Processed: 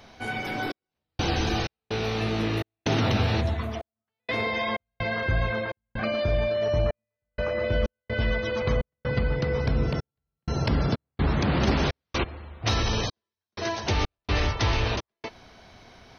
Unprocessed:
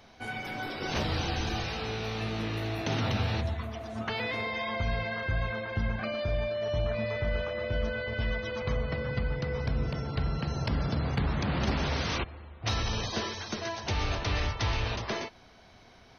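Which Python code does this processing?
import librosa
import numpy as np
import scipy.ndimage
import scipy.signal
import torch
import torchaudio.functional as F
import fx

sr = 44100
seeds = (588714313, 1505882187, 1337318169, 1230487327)

y = fx.peak_eq(x, sr, hz=3400.0, db=-14.5, octaves=0.21, at=(6.66, 7.64))
y = fx.step_gate(y, sr, bpm=63, pattern='xxx..xx.xxx.x', floor_db=-60.0, edge_ms=4.5)
y = fx.dynamic_eq(y, sr, hz=360.0, q=1.3, threshold_db=-46.0, ratio=4.0, max_db=4)
y = F.gain(torch.from_numpy(y), 5.0).numpy()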